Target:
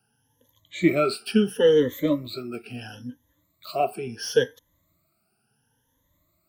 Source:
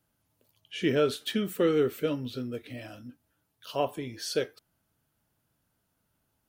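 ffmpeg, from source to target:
-filter_complex "[0:a]afftfilt=real='re*pow(10,24/40*sin(2*PI*(1.1*log(max(b,1)*sr/1024/100)/log(2)-(0.73)*(pts-256)/sr)))':imag='im*pow(10,24/40*sin(2*PI*(1.1*log(max(b,1)*sr/1024/100)/log(2)-(0.73)*(pts-256)/sr)))':win_size=1024:overlap=0.75,acrossover=split=280|4800[s0][s1][s2];[s2]asoftclip=type=tanh:threshold=0.0188[s3];[s0][s1][s3]amix=inputs=3:normalize=0"

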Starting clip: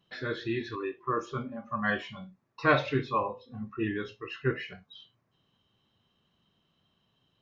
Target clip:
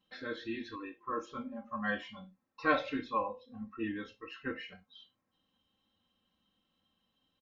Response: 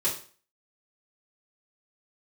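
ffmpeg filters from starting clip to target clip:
-af "aecho=1:1:3.8:0.86,volume=0.398"

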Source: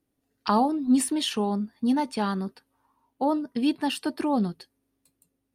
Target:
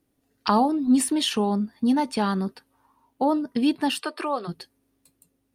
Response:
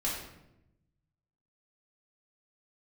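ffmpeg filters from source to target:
-filter_complex "[0:a]asplit=2[s0][s1];[s1]acompressor=threshold=0.0316:ratio=6,volume=0.891[s2];[s0][s2]amix=inputs=2:normalize=0,asplit=3[s3][s4][s5];[s3]afade=t=out:st=4:d=0.02[s6];[s4]highpass=f=410:w=0.5412,highpass=f=410:w=1.3066,equalizer=f=820:t=q:w=4:g=-5,equalizer=f=1200:t=q:w=4:g=9,equalizer=f=2600:t=q:w=4:g=4,equalizer=f=6400:t=q:w=4:g=-10,lowpass=f=9900:w=0.5412,lowpass=f=9900:w=1.3066,afade=t=in:st=4:d=0.02,afade=t=out:st=4.47:d=0.02[s7];[s5]afade=t=in:st=4.47:d=0.02[s8];[s6][s7][s8]amix=inputs=3:normalize=0"

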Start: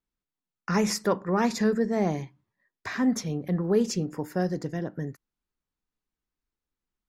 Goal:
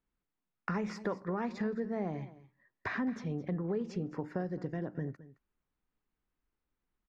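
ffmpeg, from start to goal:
-af "lowpass=2500,acompressor=threshold=0.0126:ratio=4,aecho=1:1:217:0.141,volume=1.5"

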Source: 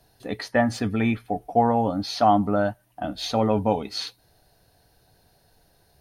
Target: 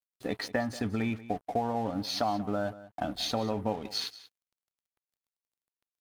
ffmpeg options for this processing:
-af "acompressor=threshold=0.0251:ratio=4,aeval=exprs='sgn(val(0))*max(abs(val(0))-0.00282,0)':c=same,aecho=1:1:185:0.141,volume=1.41"

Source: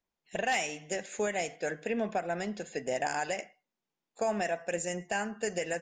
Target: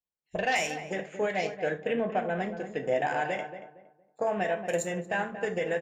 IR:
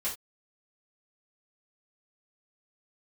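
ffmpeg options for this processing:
-filter_complex "[0:a]afwtdn=0.00631,asplit=2[s0][s1];[s1]adelay=231,lowpass=f=1200:p=1,volume=0.355,asplit=2[s2][s3];[s3]adelay=231,lowpass=f=1200:p=1,volume=0.31,asplit=2[s4][s5];[s5]adelay=231,lowpass=f=1200:p=1,volume=0.31,asplit=2[s6][s7];[s7]adelay=231,lowpass=f=1200:p=1,volume=0.31[s8];[s0][s2][s4][s6][s8]amix=inputs=5:normalize=0,asplit=2[s9][s10];[1:a]atrim=start_sample=2205,lowshelf=f=210:g=8[s11];[s10][s11]afir=irnorm=-1:irlink=0,volume=0.422[s12];[s9][s12]amix=inputs=2:normalize=0"

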